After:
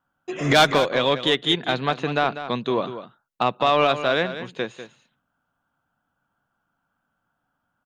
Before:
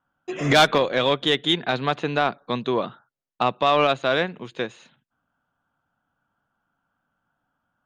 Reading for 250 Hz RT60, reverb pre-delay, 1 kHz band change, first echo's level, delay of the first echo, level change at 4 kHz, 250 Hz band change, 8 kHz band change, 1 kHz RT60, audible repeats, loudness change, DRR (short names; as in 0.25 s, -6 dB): none, none, +0.5 dB, -11.5 dB, 0.195 s, +0.5 dB, 0.0 dB, n/a, none, 1, +0.5 dB, none